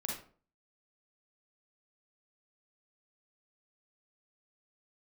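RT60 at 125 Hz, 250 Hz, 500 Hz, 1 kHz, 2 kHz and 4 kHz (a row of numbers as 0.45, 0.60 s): 0.50, 0.50, 0.50, 0.40, 0.35, 0.30 s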